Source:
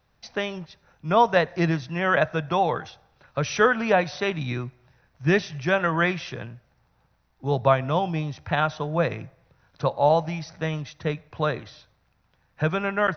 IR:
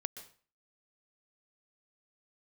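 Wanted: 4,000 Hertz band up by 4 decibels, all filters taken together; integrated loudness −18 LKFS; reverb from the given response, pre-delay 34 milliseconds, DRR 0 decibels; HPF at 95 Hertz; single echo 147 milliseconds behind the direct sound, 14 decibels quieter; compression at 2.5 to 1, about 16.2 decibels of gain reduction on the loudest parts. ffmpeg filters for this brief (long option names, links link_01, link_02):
-filter_complex "[0:a]highpass=95,equalizer=frequency=4000:width_type=o:gain=5,acompressor=threshold=-39dB:ratio=2.5,aecho=1:1:147:0.2,asplit=2[link_01][link_02];[1:a]atrim=start_sample=2205,adelay=34[link_03];[link_02][link_03]afir=irnorm=-1:irlink=0,volume=1dB[link_04];[link_01][link_04]amix=inputs=2:normalize=0,volume=17dB"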